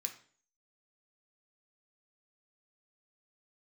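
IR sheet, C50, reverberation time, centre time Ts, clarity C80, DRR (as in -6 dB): 10.5 dB, 0.45 s, 12 ms, 15.0 dB, 3.0 dB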